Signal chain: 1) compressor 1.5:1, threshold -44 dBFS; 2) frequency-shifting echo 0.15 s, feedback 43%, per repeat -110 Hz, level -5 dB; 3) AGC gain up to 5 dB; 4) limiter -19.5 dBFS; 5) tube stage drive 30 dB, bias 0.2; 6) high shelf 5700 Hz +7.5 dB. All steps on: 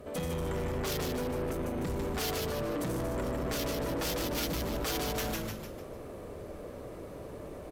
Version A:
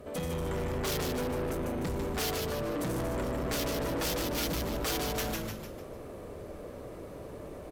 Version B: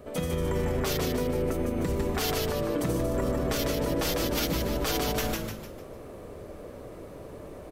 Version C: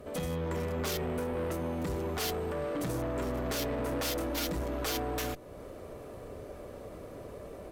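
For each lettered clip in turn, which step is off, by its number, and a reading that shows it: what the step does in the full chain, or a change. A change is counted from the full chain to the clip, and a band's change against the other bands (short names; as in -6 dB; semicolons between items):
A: 4, momentary loudness spread change +1 LU; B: 5, crest factor change +2.5 dB; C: 2, momentary loudness spread change +1 LU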